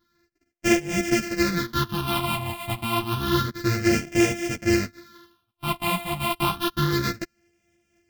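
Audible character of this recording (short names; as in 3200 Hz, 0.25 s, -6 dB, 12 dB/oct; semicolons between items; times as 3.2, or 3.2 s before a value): a buzz of ramps at a fixed pitch in blocks of 128 samples; phasing stages 6, 0.29 Hz, lowest notch 420–1100 Hz; tremolo saw up 4 Hz, depth 35%; a shimmering, thickened sound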